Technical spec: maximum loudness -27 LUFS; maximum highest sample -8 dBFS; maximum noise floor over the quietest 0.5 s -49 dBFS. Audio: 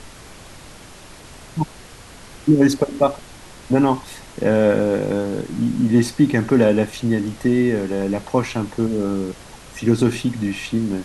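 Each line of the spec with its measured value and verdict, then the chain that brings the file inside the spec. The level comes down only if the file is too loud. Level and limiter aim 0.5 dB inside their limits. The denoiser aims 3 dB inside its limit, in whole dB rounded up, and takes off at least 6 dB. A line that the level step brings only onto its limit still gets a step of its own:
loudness -20.0 LUFS: fail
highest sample -4.5 dBFS: fail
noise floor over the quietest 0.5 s -41 dBFS: fail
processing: denoiser 6 dB, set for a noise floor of -41 dBFS; gain -7.5 dB

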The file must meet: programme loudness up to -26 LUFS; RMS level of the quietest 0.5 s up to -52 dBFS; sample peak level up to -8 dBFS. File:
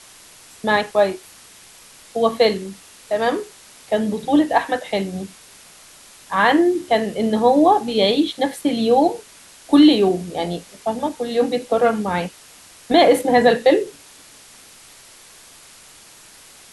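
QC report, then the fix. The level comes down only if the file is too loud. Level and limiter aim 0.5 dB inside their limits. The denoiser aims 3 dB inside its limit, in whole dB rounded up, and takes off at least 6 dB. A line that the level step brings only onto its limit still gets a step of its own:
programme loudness -18.5 LUFS: fail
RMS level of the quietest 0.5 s -46 dBFS: fail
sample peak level -3.5 dBFS: fail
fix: gain -8 dB

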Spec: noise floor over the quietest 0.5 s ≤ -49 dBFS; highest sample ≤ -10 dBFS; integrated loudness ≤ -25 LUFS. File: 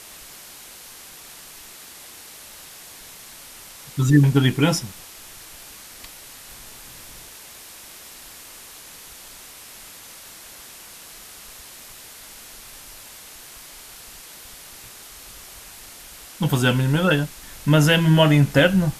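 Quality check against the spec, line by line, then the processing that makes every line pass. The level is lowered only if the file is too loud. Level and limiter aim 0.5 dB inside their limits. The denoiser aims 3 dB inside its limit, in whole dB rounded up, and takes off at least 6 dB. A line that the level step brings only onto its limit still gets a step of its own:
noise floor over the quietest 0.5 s -42 dBFS: fail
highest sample -4.0 dBFS: fail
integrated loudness -18.5 LUFS: fail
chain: denoiser 6 dB, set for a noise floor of -42 dBFS; gain -7 dB

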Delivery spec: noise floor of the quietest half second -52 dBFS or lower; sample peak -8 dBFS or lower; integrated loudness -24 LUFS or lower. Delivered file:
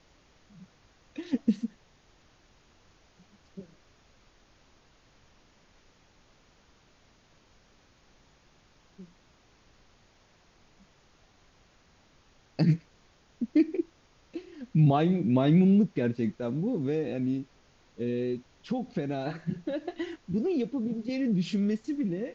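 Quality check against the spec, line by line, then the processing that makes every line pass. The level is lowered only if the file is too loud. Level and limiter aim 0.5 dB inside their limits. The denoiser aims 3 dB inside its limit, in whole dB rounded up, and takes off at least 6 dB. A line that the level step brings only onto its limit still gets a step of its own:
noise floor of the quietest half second -62 dBFS: OK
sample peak -12.5 dBFS: OK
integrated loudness -28.5 LUFS: OK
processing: none

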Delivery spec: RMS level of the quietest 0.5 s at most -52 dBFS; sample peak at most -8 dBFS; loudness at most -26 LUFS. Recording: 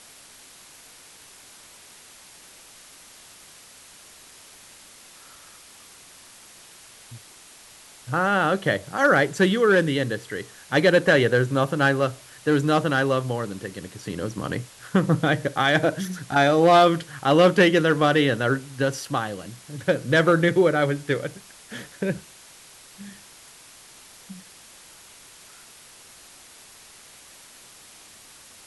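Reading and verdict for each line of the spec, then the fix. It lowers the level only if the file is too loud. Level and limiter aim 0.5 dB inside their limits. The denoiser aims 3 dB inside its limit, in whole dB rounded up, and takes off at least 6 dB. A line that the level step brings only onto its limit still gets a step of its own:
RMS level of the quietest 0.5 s -48 dBFS: fail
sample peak -6.0 dBFS: fail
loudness -21.5 LUFS: fail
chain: gain -5 dB

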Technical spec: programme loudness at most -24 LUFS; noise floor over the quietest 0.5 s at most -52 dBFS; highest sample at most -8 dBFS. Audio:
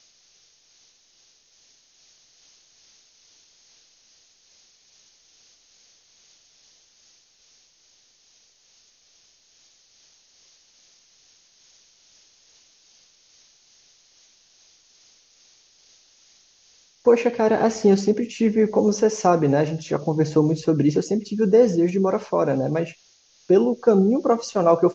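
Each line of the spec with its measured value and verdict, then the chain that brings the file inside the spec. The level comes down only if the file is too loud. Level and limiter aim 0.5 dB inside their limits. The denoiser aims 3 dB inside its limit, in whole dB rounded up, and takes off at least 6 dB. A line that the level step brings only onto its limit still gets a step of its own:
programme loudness -20.0 LUFS: fail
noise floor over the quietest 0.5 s -59 dBFS: OK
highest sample -4.5 dBFS: fail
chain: gain -4.5 dB

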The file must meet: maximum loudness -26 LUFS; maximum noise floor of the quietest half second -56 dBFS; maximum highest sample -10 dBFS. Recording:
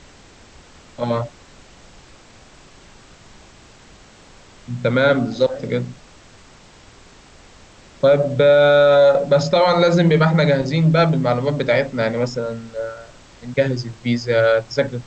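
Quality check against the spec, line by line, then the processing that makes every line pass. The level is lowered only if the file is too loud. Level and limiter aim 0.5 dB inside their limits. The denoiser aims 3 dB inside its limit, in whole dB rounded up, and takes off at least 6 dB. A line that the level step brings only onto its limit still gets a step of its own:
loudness -17.0 LUFS: fail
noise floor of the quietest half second -46 dBFS: fail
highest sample -5.0 dBFS: fail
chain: denoiser 6 dB, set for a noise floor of -46 dBFS; gain -9.5 dB

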